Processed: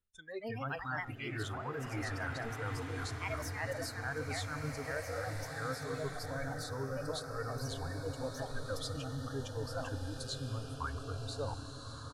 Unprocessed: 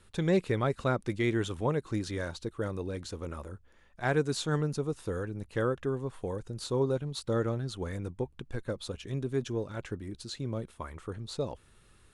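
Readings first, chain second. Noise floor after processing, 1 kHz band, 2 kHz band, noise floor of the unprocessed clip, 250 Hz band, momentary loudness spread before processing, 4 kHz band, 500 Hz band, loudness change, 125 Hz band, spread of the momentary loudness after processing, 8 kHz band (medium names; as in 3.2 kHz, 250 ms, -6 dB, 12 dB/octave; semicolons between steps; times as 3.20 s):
-47 dBFS, -2.0 dB, 0.0 dB, -61 dBFS, -10.0 dB, 11 LU, -2.0 dB, -8.5 dB, -6.5 dB, -6.0 dB, 3 LU, -1.0 dB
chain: bass shelf 65 Hz +7.5 dB; gate -45 dBFS, range -6 dB; on a send: delay 165 ms -18.5 dB; on the sum: dynamic bell 1.5 kHz, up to +8 dB, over -51 dBFS, Q 1.5; ever faster or slower copies 182 ms, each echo +3 st, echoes 2; reverse; compression 16:1, threshold -34 dBFS, peak gain reduction 15.5 dB; reverse; spectral noise reduction 25 dB; hum notches 60/120 Hz; swelling reverb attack 1650 ms, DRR 4 dB; trim +1 dB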